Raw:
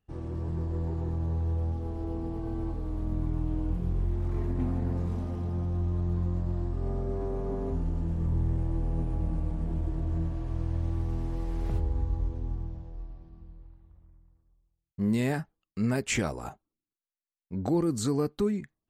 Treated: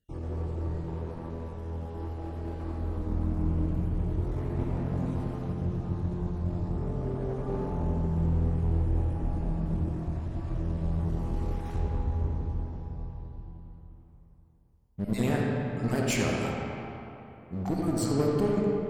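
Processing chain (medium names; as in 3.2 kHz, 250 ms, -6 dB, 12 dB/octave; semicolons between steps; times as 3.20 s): random holes in the spectrogram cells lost 30%; treble shelf 7.2 kHz +5 dB; filtered feedback delay 85 ms, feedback 43%, low-pass 2 kHz, level -5 dB; one-sided clip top -32.5 dBFS; 0.71–2.81 s: bass shelf 420 Hz -6.5 dB; reverberation RT60 3.1 s, pre-delay 5 ms, DRR -1 dB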